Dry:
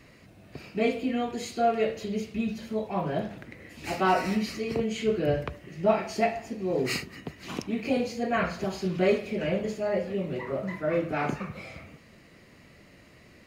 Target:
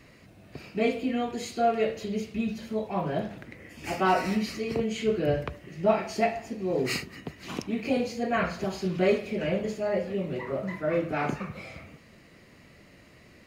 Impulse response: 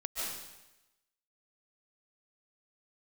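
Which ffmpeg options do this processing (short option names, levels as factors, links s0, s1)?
-filter_complex "[0:a]asettb=1/sr,asplit=3[s0][s1][s2];[s0]atrim=end=3.574[s3];[s1]atrim=start=3.57:end=4.06,asetpts=PTS-STARTPTS,afade=t=in:d=0.004:c=qsin,afade=t=out:st=0.486:d=0.004:c=qsin,bandreject=f=4000:w=6.2[s4];[s2]atrim=start=4.056[s5];[s3][s4]acrossfade=d=0.004:c1=hsin:c2=qsin[s6];[s6][s5]acrossfade=d=0.004:c1=qsin:c2=hsin"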